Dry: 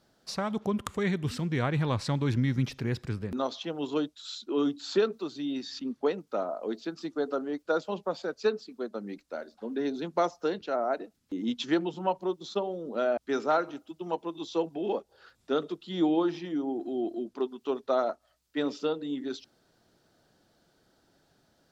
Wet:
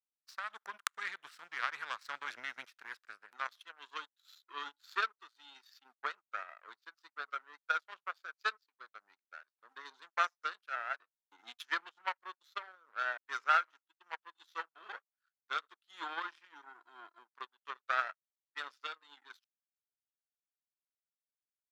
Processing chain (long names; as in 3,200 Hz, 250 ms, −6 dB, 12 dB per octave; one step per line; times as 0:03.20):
power curve on the samples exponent 2
high-pass with resonance 1,400 Hz, resonance Q 2.7
level +3 dB